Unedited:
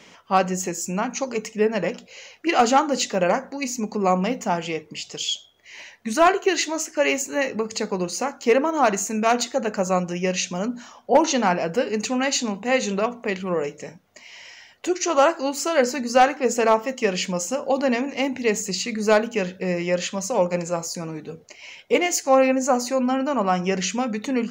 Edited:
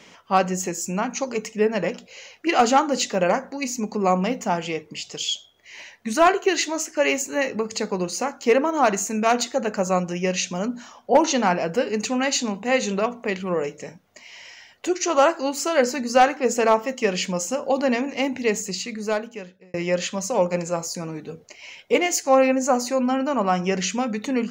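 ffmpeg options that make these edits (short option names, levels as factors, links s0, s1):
-filter_complex "[0:a]asplit=2[s0][s1];[s0]atrim=end=19.74,asetpts=PTS-STARTPTS,afade=t=out:st=18.41:d=1.33[s2];[s1]atrim=start=19.74,asetpts=PTS-STARTPTS,afade=t=in:d=0.004:c=hsin[s3];[s2][s3]concat=n=2:v=0:a=1"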